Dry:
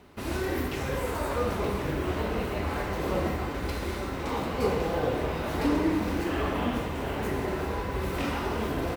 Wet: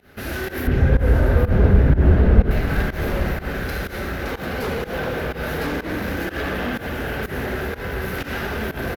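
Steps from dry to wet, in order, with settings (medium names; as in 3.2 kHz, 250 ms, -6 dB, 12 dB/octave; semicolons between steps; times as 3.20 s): graphic EQ with 31 bands 315 Hz -6 dB, 1 kHz -12 dB, 1.6 kHz +10 dB, 8 kHz -8 dB, 12.5 kHz +9 dB; sine folder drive 9 dB, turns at -15 dBFS; 0.67–2.51 s: tilt EQ -4.5 dB/octave; on a send: delay 825 ms -11.5 dB; on the sum: spring tank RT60 3.5 s, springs 32/36/47 ms, chirp 70 ms, DRR 6 dB; volume shaper 124 bpm, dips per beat 1, -19 dB, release 126 ms; trim -7 dB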